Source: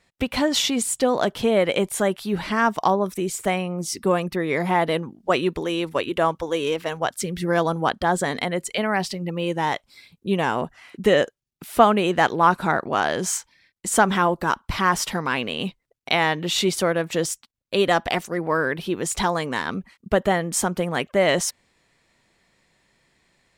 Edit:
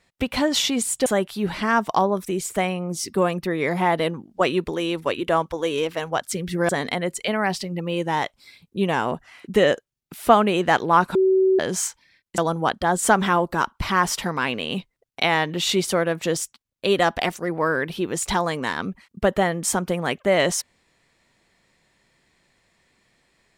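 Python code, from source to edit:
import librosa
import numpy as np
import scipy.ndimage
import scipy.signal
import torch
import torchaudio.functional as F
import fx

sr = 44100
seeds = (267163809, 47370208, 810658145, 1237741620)

y = fx.edit(x, sr, fx.cut(start_s=1.06, length_s=0.89),
    fx.move(start_s=7.58, length_s=0.61, to_s=13.88),
    fx.bleep(start_s=12.65, length_s=0.44, hz=379.0, db=-14.0), tone=tone)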